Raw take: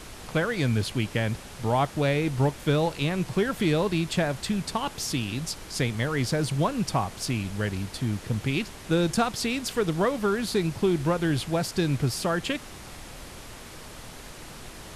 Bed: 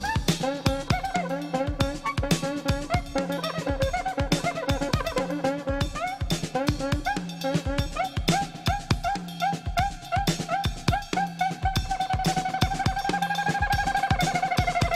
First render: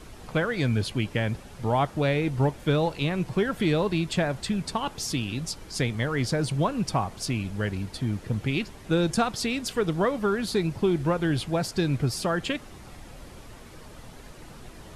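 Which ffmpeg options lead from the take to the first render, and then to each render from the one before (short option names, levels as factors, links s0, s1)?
-af "afftdn=nr=8:nf=-43"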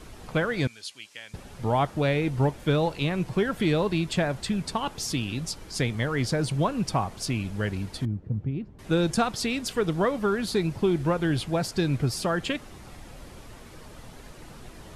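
-filter_complex "[0:a]asettb=1/sr,asplit=3[s0][s1][s2];[s0]atrim=end=0.674[s3];[s1]atrim=start=0.67:end=1.34,asetpts=PTS-STARTPTS,afade=t=in:d=0.004:c=qsin,afade=t=out:st=0.666:d=0.004:c=qsin,bandpass=f=6500:t=q:w=0.98[s4];[s2]atrim=start=1.336[s5];[s3][s4]acrossfade=d=0.004:c1=hsin:c2=qsin[s6];[s6][s5]acrossfade=d=0.004:c1=qsin:c2=hsin,asettb=1/sr,asplit=3[s7][s8][s9];[s7]atrim=end=8.054[s10];[s8]atrim=start=8.05:end=8.79,asetpts=PTS-STARTPTS,afade=t=in:d=0.004:c=qsin,afade=t=out:st=0.736:d=0.004:c=qsin,bandpass=f=110:t=q:w=0.64[s11];[s9]atrim=start=8.786[s12];[s10][s11]acrossfade=d=0.004:c1=hsin:c2=qsin[s13];[s13][s12]acrossfade=d=0.004:c1=qsin:c2=hsin"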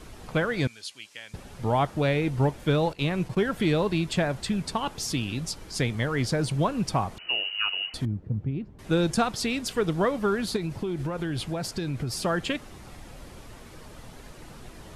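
-filter_complex "[0:a]asettb=1/sr,asplit=3[s0][s1][s2];[s0]atrim=end=2.934[s3];[s1]atrim=start=2.93:end=3.54,asetpts=PTS-STARTPTS,afade=t=in:d=0.004:c=qsin,afade=t=out:st=0.606:d=0.004:c=qsin,agate=range=0.251:threshold=0.0112:ratio=16:release=100:detection=peak[s4];[s2]atrim=start=3.536[s5];[s3][s4]acrossfade=d=0.004:c1=hsin:c2=qsin[s6];[s6][s5]acrossfade=d=0.004:c1=qsin:c2=hsin,asettb=1/sr,asplit=3[s7][s8][s9];[s7]atrim=end=7.184[s10];[s8]atrim=start=7.18:end=7.94,asetpts=PTS-STARTPTS,afade=t=in:d=0.004:c=qsin,afade=t=out:st=0.756:d=0.004:c=qsin,lowpass=f=2600:t=q:w=0.5098,lowpass=f=2600:t=q:w=0.6013,lowpass=f=2600:t=q:w=0.9,lowpass=f=2600:t=q:w=2.563,afreqshift=-3000[s11];[s9]atrim=start=7.936[s12];[s10][s11]acrossfade=d=0.004:c1=hsin:c2=qsin[s13];[s13][s12]acrossfade=d=0.004:c1=qsin:c2=hsin,asettb=1/sr,asplit=3[s14][s15][s16];[s14]atrim=end=10.564[s17];[s15]atrim=start=10.56:end=12.23,asetpts=PTS-STARTPTS,afade=t=in:d=0.004:c=qsin,afade=t=out:st=1.666:d=0.004:c=qsin,acompressor=threshold=0.0562:ratio=10:attack=3.2:release=140:knee=1:detection=peak[s18];[s16]atrim=start=12.226[s19];[s17][s18]acrossfade=d=0.004:c1=hsin:c2=qsin[s20];[s20][s19]acrossfade=d=0.004:c1=qsin:c2=hsin"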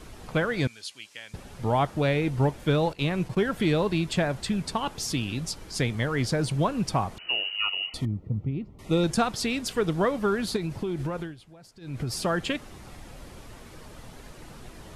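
-filter_complex "[0:a]asettb=1/sr,asplit=3[s0][s1][s2];[s0]atrim=end=7.564[s3];[s1]atrim=start=7.56:end=9.04,asetpts=PTS-STARTPTS,afade=t=in:d=0.004:c=qsin,afade=t=out:st=1.476:d=0.004:c=qsin,asuperstop=centerf=1600:order=20:qfactor=4.3[s4];[s2]atrim=start=9.036[s5];[s3][s4]acrossfade=d=0.004:c1=hsin:c2=qsin[s6];[s6][s5]acrossfade=d=0.004:c1=qsin:c2=hsin,asplit=3[s7][s8][s9];[s7]atrim=end=11.36,asetpts=PTS-STARTPTS,afade=t=out:st=11.15:d=0.21:silence=0.105925[s10];[s8]atrim=start=11.36:end=11.8,asetpts=PTS-STARTPTS,volume=0.106[s11];[s9]atrim=start=11.8,asetpts=PTS-STARTPTS,afade=t=in:d=0.21:silence=0.105925[s12];[s10][s11][s12]concat=n=3:v=0:a=1"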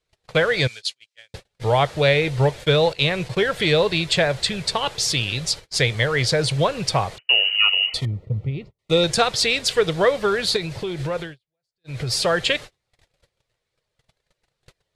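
-af "agate=range=0.0112:threshold=0.0126:ratio=16:detection=peak,equalizer=f=125:t=o:w=1:g=7,equalizer=f=250:t=o:w=1:g=-10,equalizer=f=500:t=o:w=1:g=11,equalizer=f=2000:t=o:w=1:g=8,equalizer=f=4000:t=o:w=1:g=12,equalizer=f=8000:t=o:w=1:g=6"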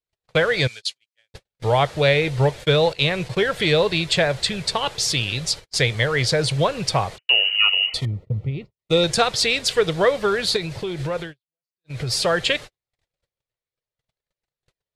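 -af "agate=range=0.158:threshold=0.02:ratio=16:detection=peak"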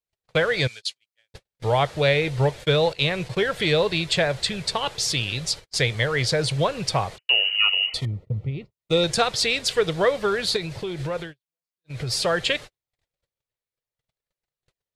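-af "volume=0.75"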